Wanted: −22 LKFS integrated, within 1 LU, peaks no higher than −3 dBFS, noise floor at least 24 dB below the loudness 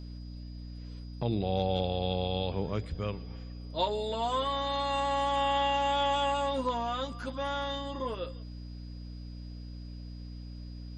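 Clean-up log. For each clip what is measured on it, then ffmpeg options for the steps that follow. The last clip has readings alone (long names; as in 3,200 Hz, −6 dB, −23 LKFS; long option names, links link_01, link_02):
mains hum 60 Hz; hum harmonics up to 300 Hz; level of the hum −40 dBFS; interfering tone 4,900 Hz; level of the tone −58 dBFS; integrated loudness −31.5 LKFS; sample peak −17.0 dBFS; target loudness −22.0 LKFS
→ -af "bandreject=frequency=60:width_type=h:width=4,bandreject=frequency=120:width_type=h:width=4,bandreject=frequency=180:width_type=h:width=4,bandreject=frequency=240:width_type=h:width=4,bandreject=frequency=300:width_type=h:width=4"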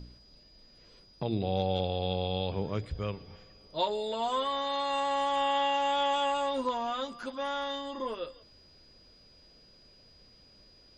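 mains hum none found; interfering tone 4,900 Hz; level of the tone −58 dBFS
→ -af "bandreject=frequency=4900:width=30"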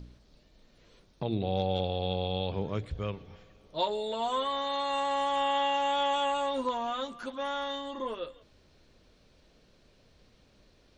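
interfering tone none found; integrated loudness −31.5 LKFS; sample peak −17.0 dBFS; target loudness −22.0 LKFS
→ -af "volume=9.5dB"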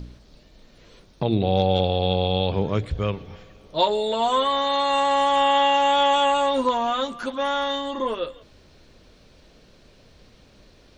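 integrated loudness −22.0 LKFS; sample peak −7.5 dBFS; background noise floor −54 dBFS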